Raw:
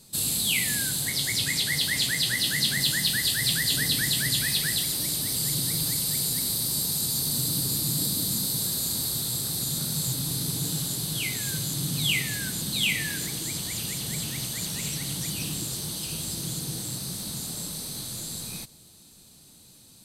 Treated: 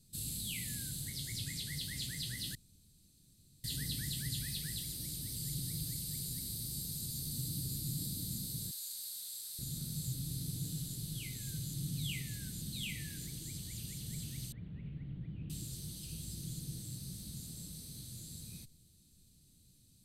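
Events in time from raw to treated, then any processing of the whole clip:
2.55–3.64 s: room tone
8.71–9.59 s: high-pass 1.2 kHz
14.52–15.50 s: Bessel low-pass 1.5 kHz, order 8
whole clip: amplifier tone stack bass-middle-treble 10-0-1; trim +5.5 dB

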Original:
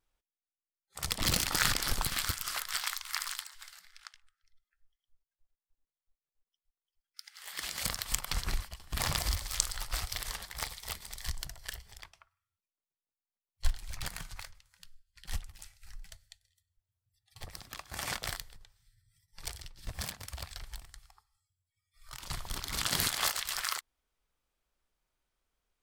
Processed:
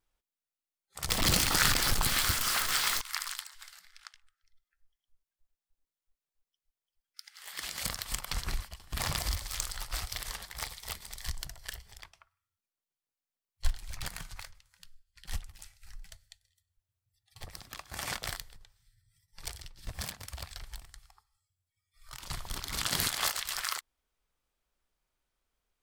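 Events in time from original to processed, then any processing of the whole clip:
1.09–3.01 s: jump at every zero crossing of -27.5 dBFS
7.25–10.81 s: valve stage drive 16 dB, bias 0.2

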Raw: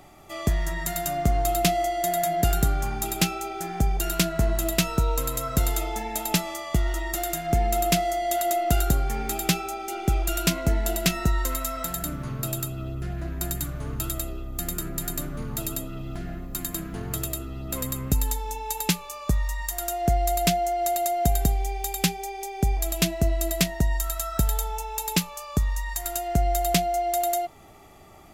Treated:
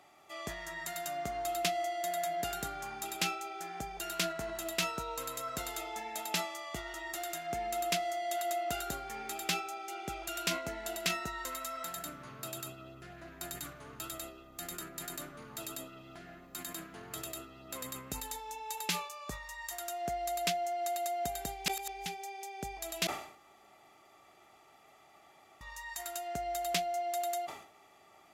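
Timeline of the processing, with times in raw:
21.66–22.06 s: reverse
23.07–25.61 s: room tone
whole clip: high-pass 870 Hz 6 dB/octave; treble shelf 8.1 kHz -10.5 dB; decay stretcher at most 92 dB/s; trim -5.5 dB

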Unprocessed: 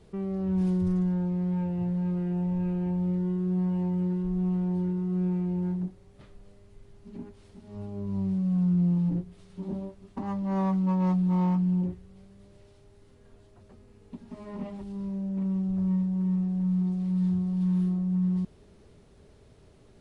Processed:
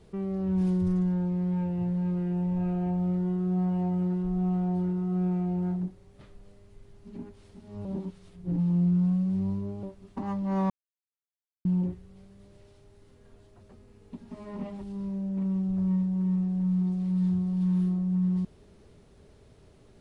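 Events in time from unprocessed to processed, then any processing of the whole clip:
2.56–5.80 s: small resonant body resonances 710/1300 Hz, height 12 dB
7.85–9.83 s: reverse
10.70–11.65 s: mute

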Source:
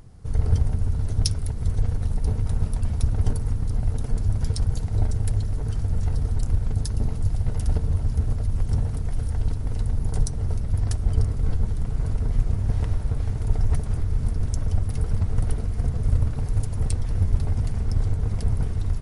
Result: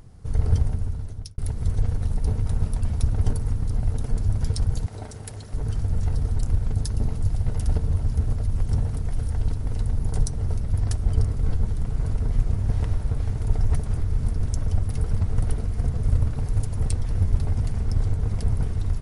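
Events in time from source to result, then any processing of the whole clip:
0.60–1.38 s: fade out
4.86–5.54 s: high-pass 440 Hz 6 dB/octave

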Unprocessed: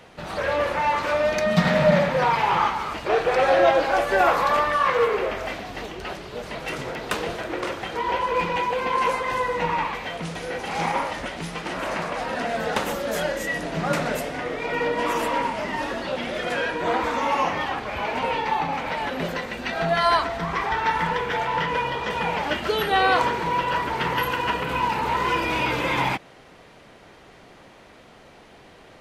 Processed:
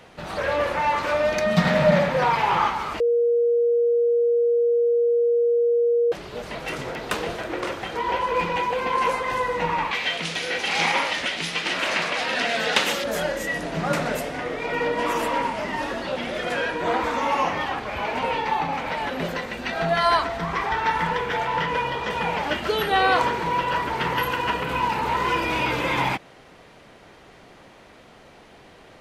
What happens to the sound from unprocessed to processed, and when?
3.00–6.12 s: bleep 473 Hz -16.5 dBFS
9.91–13.04 s: frequency weighting D

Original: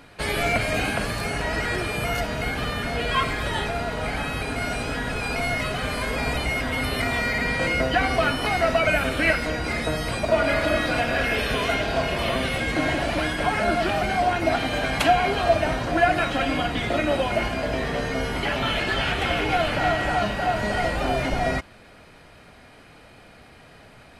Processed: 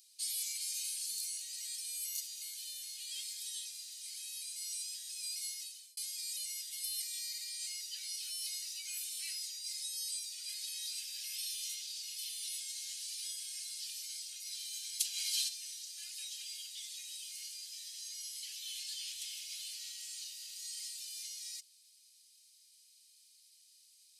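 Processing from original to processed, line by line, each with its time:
1.06–3.12 s: band-stop 5.2 kHz
5.48–5.97 s: fade out
15.09–15.51 s: level flattener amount 100%
whole clip: inverse Chebyshev high-pass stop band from 1.2 kHz, stop band 70 dB; trim +2.5 dB

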